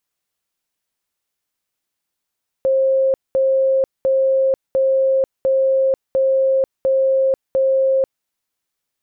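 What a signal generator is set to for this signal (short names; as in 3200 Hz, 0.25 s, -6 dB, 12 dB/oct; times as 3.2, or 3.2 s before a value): tone bursts 533 Hz, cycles 261, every 0.70 s, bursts 8, -12.5 dBFS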